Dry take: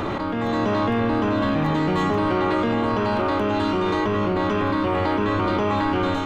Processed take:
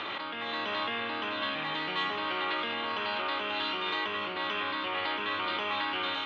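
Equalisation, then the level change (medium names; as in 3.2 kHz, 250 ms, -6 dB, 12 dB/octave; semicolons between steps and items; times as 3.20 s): band-pass filter 3.3 kHz, Q 2.1; distance through air 200 m; +8.0 dB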